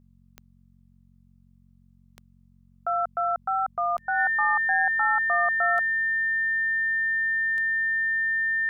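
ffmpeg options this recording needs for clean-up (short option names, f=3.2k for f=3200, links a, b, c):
-af "adeclick=t=4,bandreject=f=45.6:t=h:w=4,bandreject=f=91.2:t=h:w=4,bandreject=f=136.8:t=h:w=4,bandreject=f=182.4:t=h:w=4,bandreject=f=228:t=h:w=4,bandreject=f=1.8k:w=30,agate=range=-21dB:threshold=-50dB"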